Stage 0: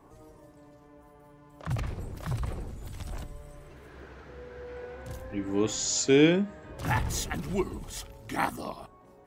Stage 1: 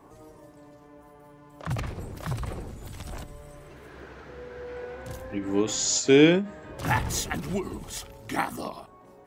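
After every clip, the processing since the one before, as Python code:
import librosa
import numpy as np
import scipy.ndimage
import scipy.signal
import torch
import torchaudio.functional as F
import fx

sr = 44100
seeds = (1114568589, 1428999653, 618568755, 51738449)

y = fx.low_shelf(x, sr, hz=85.0, db=-7.5)
y = fx.end_taper(y, sr, db_per_s=150.0)
y = y * 10.0 ** (4.0 / 20.0)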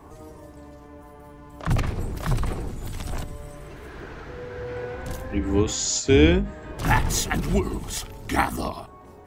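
y = fx.octave_divider(x, sr, octaves=2, level_db=0.0)
y = fx.notch(y, sr, hz=540.0, q=12.0)
y = fx.rider(y, sr, range_db=3, speed_s=0.5)
y = y * 10.0 ** (2.5 / 20.0)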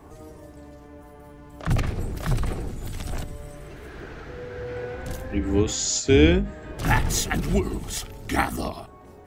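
y = fx.peak_eq(x, sr, hz=1000.0, db=-5.5, octaves=0.34)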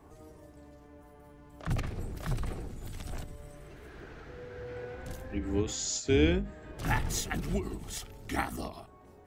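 y = fx.end_taper(x, sr, db_per_s=150.0)
y = y * 10.0 ** (-8.5 / 20.0)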